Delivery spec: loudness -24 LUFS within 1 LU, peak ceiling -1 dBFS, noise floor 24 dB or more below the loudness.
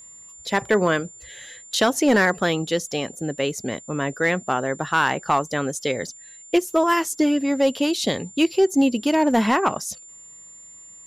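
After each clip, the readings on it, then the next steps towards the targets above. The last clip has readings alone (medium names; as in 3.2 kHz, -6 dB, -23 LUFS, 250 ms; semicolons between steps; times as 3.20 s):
clipped samples 0.3%; clipping level -10.5 dBFS; steady tone 7.2 kHz; tone level -42 dBFS; loudness -22.0 LUFS; peak level -10.5 dBFS; loudness target -24.0 LUFS
-> clip repair -10.5 dBFS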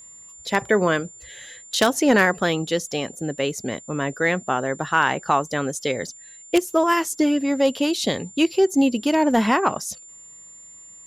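clipped samples 0.0%; steady tone 7.2 kHz; tone level -42 dBFS
-> band-stop 7.2 kHz, Q 30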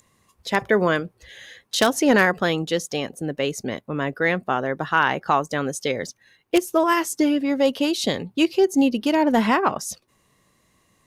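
steady tone not found; loudness -22.0 LUFS; peak level -1.5 dBFS; loudness target -24.0 LUFS
-> trim -2 dB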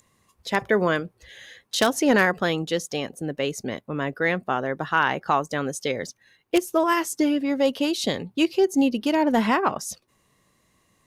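loudness -24.0 LUFS; peak level -3.5 dBFS; noise floor -67 dBFS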